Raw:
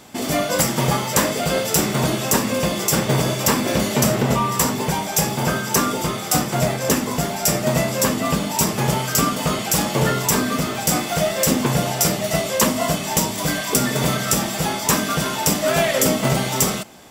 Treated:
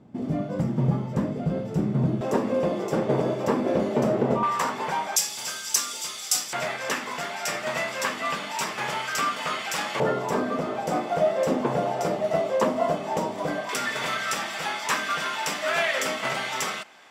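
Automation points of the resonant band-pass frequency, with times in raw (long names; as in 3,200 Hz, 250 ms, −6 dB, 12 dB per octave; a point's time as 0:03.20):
resonant band-pass, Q 1
160 Hz
from 0:02.21 440 Hz
from 0:04.43 1,200 Hz
from 0:05.16 5,800 Hz
from 0:06.53 1,800 Hz
from 0:10.00 590 Hz
from 0:13.69 1,800 Hz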